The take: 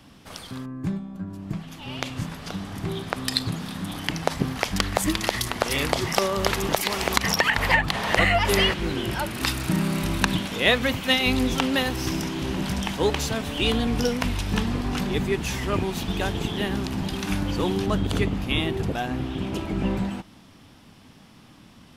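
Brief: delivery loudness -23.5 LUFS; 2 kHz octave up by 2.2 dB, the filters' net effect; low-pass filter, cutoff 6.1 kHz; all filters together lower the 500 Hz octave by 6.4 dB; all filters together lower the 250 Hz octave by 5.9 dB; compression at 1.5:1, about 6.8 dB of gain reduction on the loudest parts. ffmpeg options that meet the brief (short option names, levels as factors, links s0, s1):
-af "lowpass=6100,equalizer=f=250:t=o:g=-6.5,equalizer=f=500:t=o:g=-6.5,equalizer=f=2000:t=o:g=3,acompressor=threshold=0.02:ratio=1.5,volume=2.37"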